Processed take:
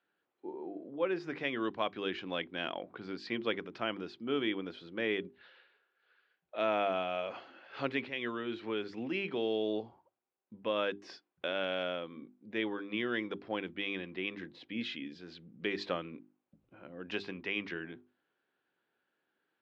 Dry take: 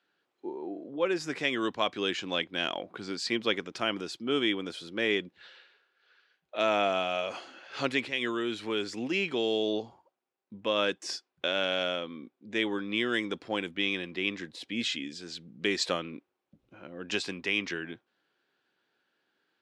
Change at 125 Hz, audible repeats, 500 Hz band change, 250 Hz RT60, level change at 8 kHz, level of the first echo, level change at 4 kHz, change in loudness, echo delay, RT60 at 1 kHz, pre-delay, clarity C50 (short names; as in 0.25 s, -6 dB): -4.0 dB, none, -4.0 dB, none, under -20 dB, none, -9.5 dB, -5.5 dB, none, none, none, none